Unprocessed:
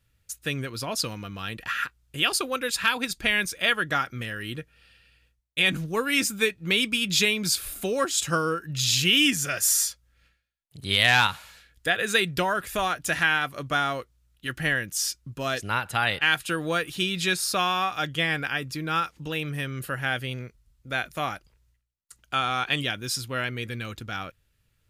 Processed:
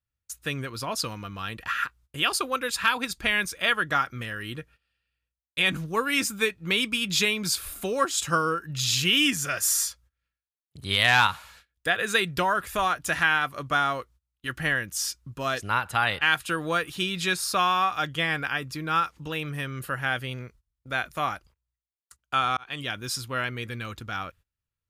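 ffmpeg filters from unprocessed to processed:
-filter_complex "[0:a]asplit=2[s0][s1];[s0]atrim=end=22.57,asetpts=PTS-STARTPTS,afade=t=out:st=22.566:d=0.004:c=hsin[s2];[s1]atrim=start=22.57,asetpts=PTS-STARTPTS,afade=t=in:d=0.41[s3];[s2][s3]concat=n=2:v=0:a=1,equalizer=f=1100:t=o:w=0.86:g=6,agate=range=0.1:threshold=0.00316:ratio=16:detection=peak,equalizer=f=73:t=o:w=0.42:g=7,volume=0.794"

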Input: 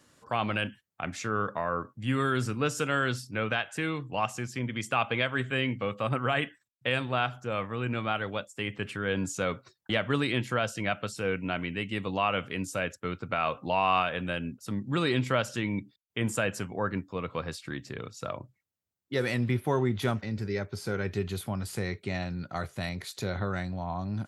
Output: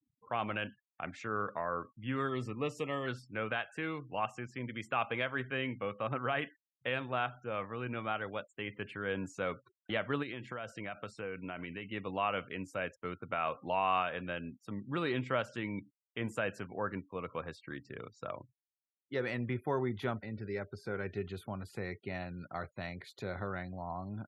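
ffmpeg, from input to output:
-filter_complex "[0:a]asplit=3[s0][s1][s2];[s0]afade=t=out:st=2.27:d=0.02[s3];[s1]asuperstop=centerf=1500:order=20:qfactor=3.8,afade=t=in:st=2.27:d=0.02,afade=t=out:st=3.06:d=0.02[s4];[s2]afade=t=in:st=3.06:d=0.02[s5];[s3][s4][s5]amix=inputs=3:normalize=0,asplit=3[s6][s7][s8];[s6]afade=t=out:st=10.22:d=0.02[s9];[s7]acompressor=threshold=0.0355:ratio=12:attack=3.2:release=140:knee=1:detection=peak,afade=t=in:st=10.22:d=0.02,afade=t=out:st=11.87:d=0.02[s10];[s8]afade=t=in:st=11.87:d=0.02[s11];[s9][s10][s11]amix=inputs=3:normalize=0,afftfilt=real='re*gte(hypot(re,im),0.00447)':imag='im*gte(hypot(re,im),0.00447)':win_size=1024:overlap=0.75,bass=f=250:g=-5,treble=f=4000:g=-14,volume=0.562"

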